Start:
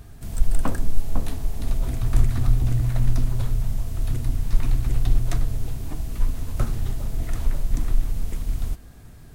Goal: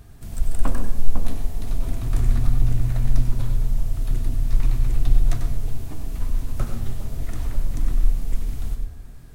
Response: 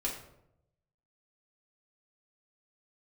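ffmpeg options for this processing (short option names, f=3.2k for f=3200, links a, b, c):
-filter_complex "[0:a]asplit=2[a][b];[1:a]atrim=start_sample=2205,adelay=93[c];[b][c]afir=irnorm=-1:irlink=0,volume=-9dB[d];[a][d]amix=inputs=2:normalize=0,volume=-2.5dB"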